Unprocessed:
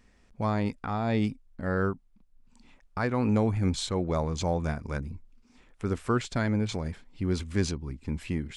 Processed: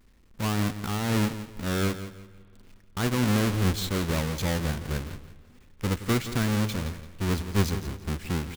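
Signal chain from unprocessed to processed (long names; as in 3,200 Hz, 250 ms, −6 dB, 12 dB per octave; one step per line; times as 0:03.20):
each half-wave held at its own peak
parametric band 690 Hz −6.5 dB 0.76 octaves
repeating echo 170 ms, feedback 29%, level −12.5 dB
on a send at −21.5 dB: convolution reverb RT60 2.7 s, pre-delay 40 ms
on the sum: level −2.5 dB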